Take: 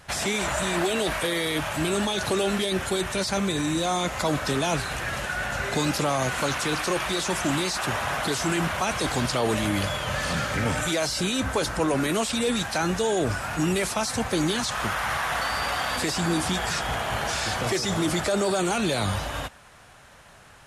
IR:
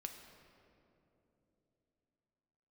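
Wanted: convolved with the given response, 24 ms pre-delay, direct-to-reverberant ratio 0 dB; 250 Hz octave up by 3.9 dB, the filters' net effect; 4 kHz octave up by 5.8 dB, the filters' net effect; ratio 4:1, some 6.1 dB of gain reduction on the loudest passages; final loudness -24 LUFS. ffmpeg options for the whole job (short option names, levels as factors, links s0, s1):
-filter_complex "[0:a]equalizer=f=250:t=o:g=5.5,equalizer=f=4000:t=o:g=7,acompressor=threshold=0.0562:ratio=4,asplit=2[s0][s1];[1:a]atrim=start_sample=2205,adelay=24[s2];[s1][s2]afir=irnorm=-1:irlink=0,volume=1.5[s3];[s0][s3]amix=inputs=2:normalize=0"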